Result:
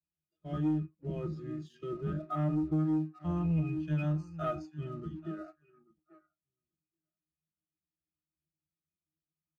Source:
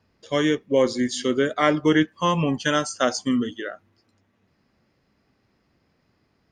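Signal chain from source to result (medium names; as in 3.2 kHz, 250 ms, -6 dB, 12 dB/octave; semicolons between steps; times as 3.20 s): octave divider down 1 oct, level -2 dB; comb 5.6 ms, depth 63%; tempo 0.68×; pitch-class resonator D#, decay 0.2 s; on a send: feedback delay 835 ms, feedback 27%, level -18.5 dB; on the sum: compression 10:1, threshold -25 dBFS, peak gain reduction 13 dB; waveshaping leveller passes 1; spectral noise reduction 18 dB; trim -3 dB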